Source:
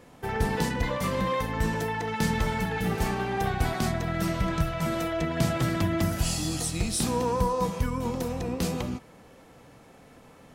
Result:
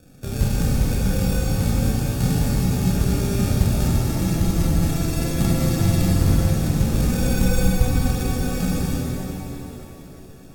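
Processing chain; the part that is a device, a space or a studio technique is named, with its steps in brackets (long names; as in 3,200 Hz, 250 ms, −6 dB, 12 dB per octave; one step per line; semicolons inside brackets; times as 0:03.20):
crushed at another speed (tape speed factor 1.25×; decimation without filtering 35×; tape speed factor 0.8×)
bass and treble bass +13 dB, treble +11 dB
reverb with rising layers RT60 3.2 s, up +7 semitones, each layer −8 dB, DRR −3.5 dB
level −6.5 dB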